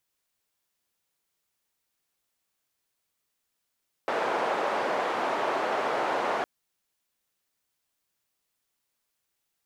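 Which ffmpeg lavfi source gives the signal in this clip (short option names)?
-f lavfi -i "anoisesrc=c=white:d=2.36:r=44100:seed=1,highpass=f=560,lowpass=f=750,volume=-4.6dB"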